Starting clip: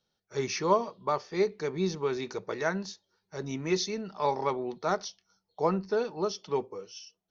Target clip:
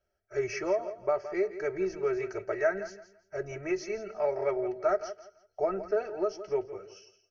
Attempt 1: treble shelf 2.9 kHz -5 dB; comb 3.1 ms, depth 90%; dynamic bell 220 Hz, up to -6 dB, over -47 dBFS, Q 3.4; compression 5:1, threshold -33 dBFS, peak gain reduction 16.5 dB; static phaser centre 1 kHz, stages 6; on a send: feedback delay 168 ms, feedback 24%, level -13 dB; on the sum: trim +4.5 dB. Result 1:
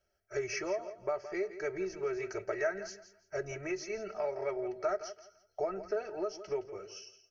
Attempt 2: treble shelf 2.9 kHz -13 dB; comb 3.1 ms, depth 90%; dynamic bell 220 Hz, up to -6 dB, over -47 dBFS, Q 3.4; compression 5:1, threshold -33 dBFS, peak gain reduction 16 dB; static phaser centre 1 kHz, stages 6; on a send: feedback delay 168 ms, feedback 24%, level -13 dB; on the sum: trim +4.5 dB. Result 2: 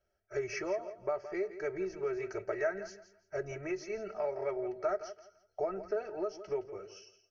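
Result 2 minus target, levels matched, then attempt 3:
compression: peak gain reduction +6.5 dB
treble shelf 2.9 kHz -13 dB; comb 3.1 ms, depth 90%; dynamic bell 220 Hz, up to -6 dB, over -47 dBFS, Q 3.4; compression 5:1, threshold -25 dBFS, peak gain reduction 9.5 dB; static phaser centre 1 kHz, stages 6; on a send: feedback delay 168 ms, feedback 24%, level -13 dB; on the sum: trim +4.5 dB

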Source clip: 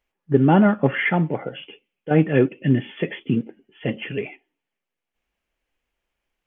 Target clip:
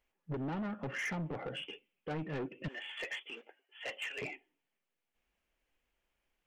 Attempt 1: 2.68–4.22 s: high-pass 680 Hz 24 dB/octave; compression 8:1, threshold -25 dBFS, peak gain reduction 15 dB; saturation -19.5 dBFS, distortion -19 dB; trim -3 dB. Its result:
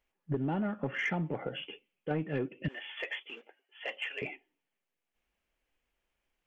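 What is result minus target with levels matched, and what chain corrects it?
saturation: distortion -12 dB
2.68–4.22 s: high-pass 680 Hz 24 dB/octave; compression 8:1, threshold -25 dBFS, peak gain reduction 15 dB; saturation -31 dBFS, distortion -7 dB; trim -3 dB

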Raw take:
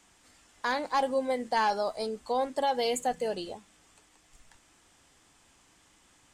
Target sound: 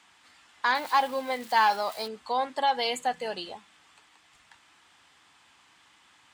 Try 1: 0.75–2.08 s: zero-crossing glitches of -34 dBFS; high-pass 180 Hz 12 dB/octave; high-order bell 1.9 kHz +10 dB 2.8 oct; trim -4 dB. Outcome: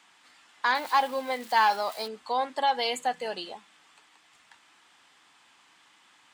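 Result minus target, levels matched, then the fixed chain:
125 Hz band -2.5 dB
0.75–2.08 s: zero-crossing glitches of -34 dBFS; high-pass 84 Hz 12 dB/octave; high-order bell 1.9 kHz +10 dB 2.8 oct; trim -4 dB

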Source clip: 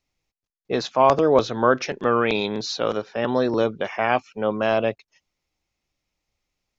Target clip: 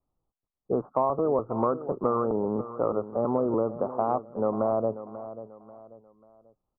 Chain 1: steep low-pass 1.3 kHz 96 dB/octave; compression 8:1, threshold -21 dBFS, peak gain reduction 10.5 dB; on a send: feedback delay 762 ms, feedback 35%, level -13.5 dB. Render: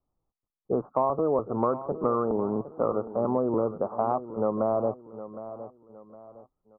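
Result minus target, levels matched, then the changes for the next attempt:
echo 223 ms late
change: feedback delay 539 ms, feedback 35%, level -13.5 dB

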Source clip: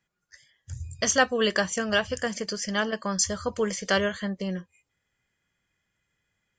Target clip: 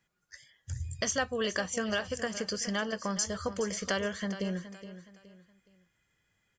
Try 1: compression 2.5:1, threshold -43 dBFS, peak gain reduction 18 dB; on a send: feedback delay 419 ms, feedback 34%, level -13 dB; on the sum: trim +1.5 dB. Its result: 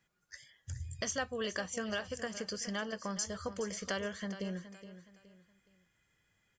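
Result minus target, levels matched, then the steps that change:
compression: peak gain reduction +5.5 dB
change: compression 2.5:1, threshold -34 dBFS, peak gain reduction 12.5 dB

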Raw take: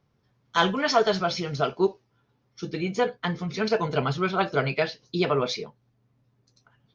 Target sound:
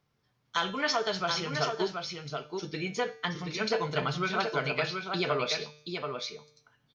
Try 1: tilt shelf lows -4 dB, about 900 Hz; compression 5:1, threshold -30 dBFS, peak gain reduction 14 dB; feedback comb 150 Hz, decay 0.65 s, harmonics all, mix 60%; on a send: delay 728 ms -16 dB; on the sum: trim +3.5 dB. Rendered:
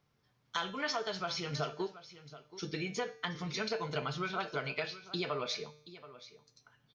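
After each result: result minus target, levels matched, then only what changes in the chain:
echo-to-direct -10.5 dB; compression: peak gain reduction +7 dB
change: delay 728 ms -5.5 dB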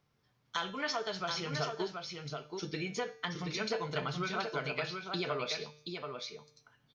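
compression: peak gain reduction +7 dB
change: compression 5:1, threshold -21.5 dBFS, peak gain reduction 7.5 dB

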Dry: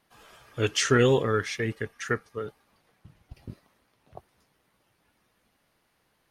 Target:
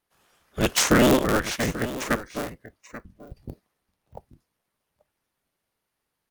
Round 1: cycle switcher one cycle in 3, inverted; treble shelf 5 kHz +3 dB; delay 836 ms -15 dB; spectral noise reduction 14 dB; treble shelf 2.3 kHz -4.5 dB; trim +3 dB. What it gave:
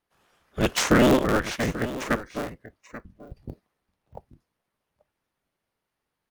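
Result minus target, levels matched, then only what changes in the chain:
8 kHz band -4.5 dB
change: first treble shelf 5 kHz +11 dB

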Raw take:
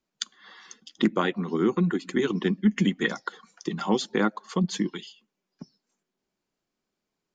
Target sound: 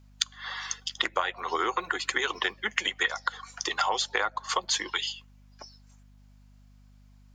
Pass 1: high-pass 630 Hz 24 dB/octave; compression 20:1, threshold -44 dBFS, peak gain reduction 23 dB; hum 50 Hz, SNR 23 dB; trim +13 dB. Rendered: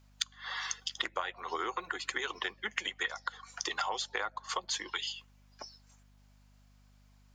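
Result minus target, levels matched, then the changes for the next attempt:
compression: peak gain reduction +7.5 dB
change: compression 20:1, threshold -36 dBFS, peak gain reduction 15.5 dB

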